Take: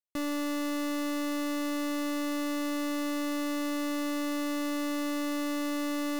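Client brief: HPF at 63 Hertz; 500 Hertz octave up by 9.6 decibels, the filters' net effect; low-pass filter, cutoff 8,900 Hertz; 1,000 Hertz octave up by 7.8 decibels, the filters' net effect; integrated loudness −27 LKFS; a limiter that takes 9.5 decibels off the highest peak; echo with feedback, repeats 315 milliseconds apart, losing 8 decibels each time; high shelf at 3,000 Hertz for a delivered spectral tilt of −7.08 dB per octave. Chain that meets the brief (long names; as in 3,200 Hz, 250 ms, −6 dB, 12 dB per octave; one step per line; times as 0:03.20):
high-pass filter 63 Hz
low-pass filter 8,900 Hz
parametric band 500 Hz +9 dB
parametric band 1,000 Hz +8 dB
high-shelf EQ 3,000 Hz −3.5 dB
brickwall limiter −29.5 dBFS
repeating echo 315 ms, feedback 40%, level −8 dB
level +11 dB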